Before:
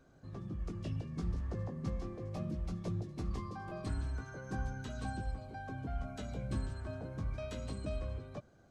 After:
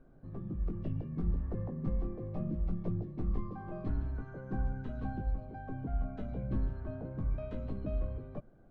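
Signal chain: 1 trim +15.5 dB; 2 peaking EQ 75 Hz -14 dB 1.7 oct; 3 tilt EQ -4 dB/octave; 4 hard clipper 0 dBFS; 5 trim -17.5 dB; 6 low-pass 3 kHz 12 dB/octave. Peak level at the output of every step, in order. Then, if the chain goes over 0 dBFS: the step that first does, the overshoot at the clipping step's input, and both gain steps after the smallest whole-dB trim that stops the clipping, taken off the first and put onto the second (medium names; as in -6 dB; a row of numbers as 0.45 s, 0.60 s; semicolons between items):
-9.5 dBFS, -14.0 dBFS, -3.5 dBFS, -3.5 dBFS, -21.0 dBFS, -21.0 dBFS; nothing clips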